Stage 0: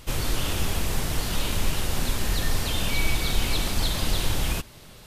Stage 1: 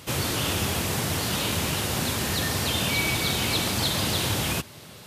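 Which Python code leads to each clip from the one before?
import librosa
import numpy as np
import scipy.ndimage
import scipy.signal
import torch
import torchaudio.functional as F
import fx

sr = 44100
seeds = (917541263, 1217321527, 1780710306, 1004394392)

y = scipy.signal.sosfilt(scipy.signal.butter(4, 87.0, 'highpass', fs=sr, output='sos'), x)
y = y * librosa.db_to_amplitude(3.5)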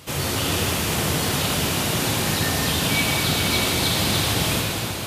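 y = fx.rev_plate(x, sr, seeds[0], rt60_s=5.0, hf_ratio=0.85, predelay_ms=0, drr_db=-2.5)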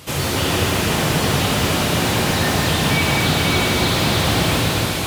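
y = fx.echo_alternate(x, sr, ms=258, hz=2400.0, feedback_pct=56, wet_db=-4)
y = fx.slew_limit(y, sr, full_power_hz=250.0)
y = y * librosa.db_to_amplitude(4.0)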